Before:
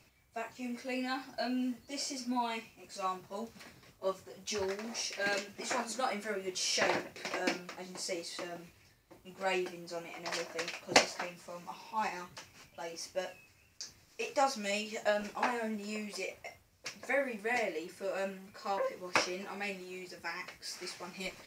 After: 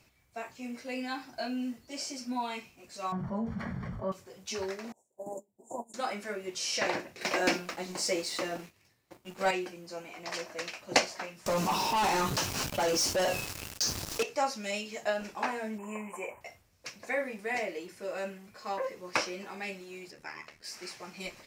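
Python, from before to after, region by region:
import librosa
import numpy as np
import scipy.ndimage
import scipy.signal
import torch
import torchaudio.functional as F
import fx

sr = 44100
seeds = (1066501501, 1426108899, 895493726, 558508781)

y = fx.chain(x, sr, fx.savgol(points=41),
    fx.low_shelf_res(hz=250.0, db=6.5, q=3.0),
    fx.env_flatten(amount_pct=70), at=(3.12, 4.12))
y = fx.chain(y, sr, fx.cheby1_bandstop(low_hz=950.0, high_hz=7200.0, order=5),
    fx.upward_expand(threshold_db=-52.0, expansion=2.5), at=(4.92, 5.94))
y = fx.chain(y, sr, fx.highpass(hz=97.0, slope=12),
    fx.leveller(passes=2), at=(7.21, 9.51))
y = fx.chain(y, sr, fx.peak_eq(hz=2100.0, db=-8.5, octaves=0.65),
    fx.leveller(passes=5),
    fx.env_flatten(amount_pct=50), at=(11.46, 14.23))
y = fx.chain(y, sr, fx.cheby1_bandstop(low_hz=2400.0, high_hz=7400.0, order=3),
    fx.peak_eq(hz=870.0, db=9.5, octaves=0.53),
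    fx.small_body(hz=(990.0, 3000.0), ring_ms=40, db=16), at=(15.78, 16.41))
y = fx.chain(y, sr, fx.high_shelf(hz=9500.0, db=-8.5),
    fx.ring_mod(carrier_hz=38.0), at=(20.11, 20.64))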